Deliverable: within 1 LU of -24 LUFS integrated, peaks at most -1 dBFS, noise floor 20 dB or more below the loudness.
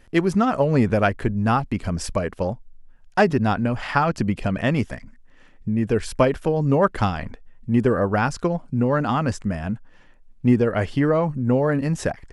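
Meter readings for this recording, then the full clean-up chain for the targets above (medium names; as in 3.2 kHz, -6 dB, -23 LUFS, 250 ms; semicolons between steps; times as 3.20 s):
loudness -22.0 LUFS; peak level -4.5 dBFS; loudness target -24.0 LUFS
-> trim -2 dB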